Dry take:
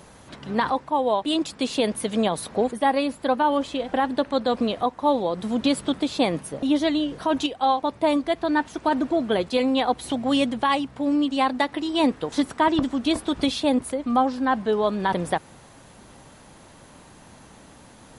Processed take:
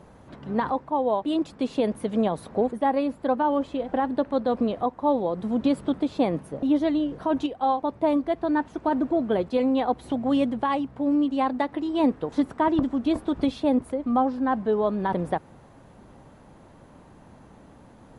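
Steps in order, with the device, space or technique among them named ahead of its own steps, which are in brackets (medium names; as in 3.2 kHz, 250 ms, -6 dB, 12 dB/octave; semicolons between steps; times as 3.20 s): through cloth (treble shelf 2 kHz -16.5 dB)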